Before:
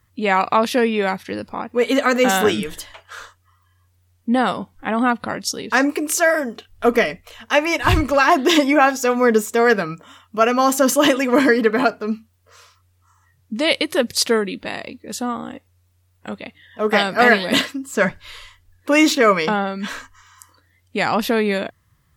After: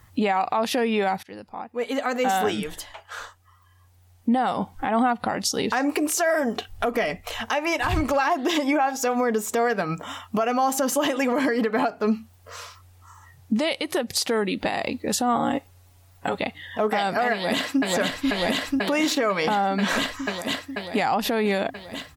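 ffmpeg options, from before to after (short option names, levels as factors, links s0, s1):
-filter_complex "[0:a]asettb=1/sr,asplit=3[s0][s1][s2];[s0]atrim=end=15.354[s3];[s1]atrim=start=15.35:end=16.39,asetpts=PTS-STARTPTS,afade=t=in:d=0.004:c=qsin,afade=t=out:st=1.036:d=0.004:c=qsin,aecho=1:1:7.2:0.65,atrim=end_sample=45864[s4];[s2]atrim=start=16.386[s5];[s3][s4]acrossfade=d=0.004:c1=hsin:c2=qsin[s6];[s6][s5]acrossfade=d=0.004:c1=qsin:c2=hsin,asplit=2[s7][s8];[s8]afade=t=in:st=17.33:d=0.01,afade=t=out:st=17.81:d=0.01,aecho=0:1:490|980|1470|1960|2450|2940|3430|3920|4410|4900|5390|5880:0.841395|0.588977|0.412284|0.288599|0.202019|0.141413|0.0989893|0.0692925|0.0485048|0.0339533|0.0237673|0.0166371[s9];[s7][s9]amix=inputs=2:normalize=0,asplit=2[s10][s11];[s10]atrim=end=1.23,asetpts=PTS-STARTPTS,afade=t=out:st=1.226:d=0.004:c=hsin:silence=0.0891251[s12];[s11]atrim=start=1.23,asetpts=PTS-STARTPTS,afade=t=in:d=3.68:c=qua:silence=0.0891251[s13];[s12][s13]concat=n=2:v=0:a=1,equalizer=f=780:t=o:w=0.38:g=9.5,acompressor=threshold=0.0562:ratio=5,alimiter=limit=0.0794:level=0:latency=1:release=130,volume=2.66"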